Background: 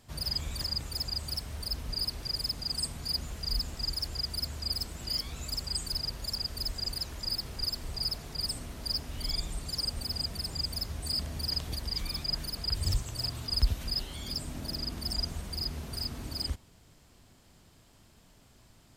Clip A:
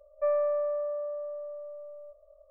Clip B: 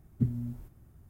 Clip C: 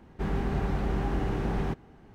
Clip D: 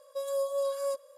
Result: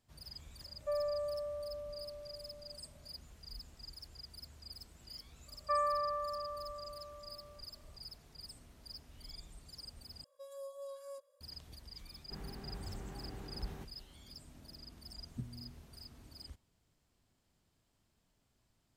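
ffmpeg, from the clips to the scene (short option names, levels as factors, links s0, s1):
-filter_complex "[1:a]asplit=2[s0][s1];[0:a]volume=0.133[s2];[s1]highpass=f=1200:t=q:w=2.9[s3];[3:a]aemphasis=mode=production:type=50fm[s4];[s2]asplit=2[s5][s6];[s5]atrim=end=10.244[s7];[4:a]atrim=end=1.17,asetpts=PTS-STARTPTS,volume=0.15[s8];[s6]atrim=start=11.406[s9];[s0]atrim=end=2.5,asetpts=PTS-STARTPTS,volume=0.355,afade=t=in:d=0.004:c=hsin,afade=t=out:st=2.496:d=0.004:c=hsin,adelay=650[s10];[s3]atrim=end=2.5,asetpts=PTS-STARTPTS,volume=0.841,afade=t=in:d=0.004:c=hsin,afade=t=out:st=2.496:d=0.004:c=hsin,adelay=5470[s11];[s4]atrim=end=2.14,asetpts=PTS-STARTPTS,volume=0.126,afade=t=in:d=0.004:c=hsin,afade=t=out:st=2.136:d=0.004:c=hsin,adelay=12110[s12];[2:a]atrim=end=1.09,asetpts=PTS-STARTPTS,volume=0.168,afade=t=in:d=0.004:c=hsin,afade=t=out:st=1.086:d=0.004:c=hsin,adelay=15170[s13];[s7][s8]acrossfade=d=0.004:c1=hsin:c2=hsin[s14];[s14][s9]acrossfade=d=0.004:c1=hsin:c2=hsin[s15];[s15][s10][s11][s12][s13]amix=inputs=5:normalize=0"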